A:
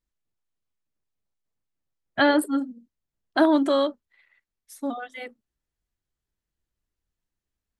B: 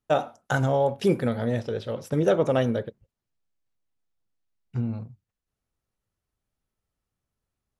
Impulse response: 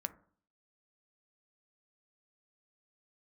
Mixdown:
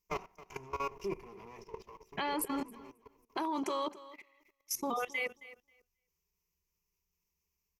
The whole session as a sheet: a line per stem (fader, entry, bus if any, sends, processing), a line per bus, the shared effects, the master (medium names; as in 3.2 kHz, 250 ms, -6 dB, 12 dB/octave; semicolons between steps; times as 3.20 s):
+2.5 dB, 0.00 s, no send, echo send -17.5 dB, treble shelf 3.1 kHz +9.5 dB; compression 2.5:1, threshold -24 dBFS, peak gain reduction 7.5 dB
-9.0 dB, 0.00 s, no send, echo send -17.5 dB, comb filter that takes the minimum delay 2.9 ms; auto duck -14 dB, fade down 0.40 s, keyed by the first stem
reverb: none
echo: feedback delay 269 ms, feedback 18%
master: rippled EQ curve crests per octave 0.79, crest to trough 16 dB; level held to a coarse grid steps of 17 dB